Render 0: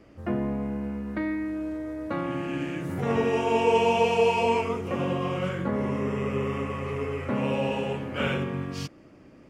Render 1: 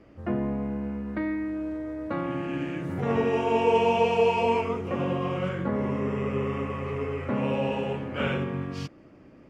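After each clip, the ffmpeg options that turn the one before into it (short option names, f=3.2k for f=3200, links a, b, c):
-af "lowpass=f=3.2k:p=1"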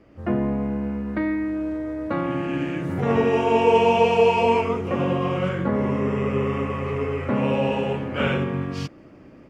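-af "dynaudnorm=f=110:g=3:m=5dB"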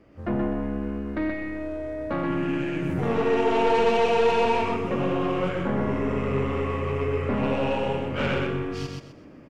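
-filter_complex "[0:a]aeval=exprs='(tanh(7.94*val(0)+0.35)-tanh(0.35))/7.94':c=same,asplit=2[a][b];[b]aecho=0:1:127|254|381|508:0.631|0.177|0.0495|0.0139[c];[a][c]amix=inputs=2:normalize=0,volume=-1dB"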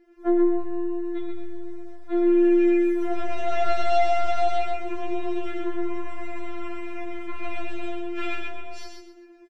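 -filter_complex "[0:a]asplit=2[a][b];[b]adelay=14,volume=-4dB[c];[a][c]amix=inputs=2:normalize=0,afftfilt=real='re*4*eq(mod(b,16),0)':imag='im*4*eq(mod(b,16),0)':win_size=2048:overlap=0.75,volume=-1dB"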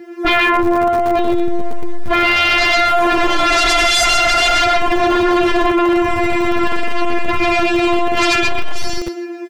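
-filter_complex "[0:a]acrossover=split=120[a][b];[a]acrusher=bits=7:mix=0:aa=0.000001[c];[c][b]amix=inputs=2:normalize=0,aeval=exprs='0.316*sin(PI/2*8.91*val(0)/0.316)':c=same"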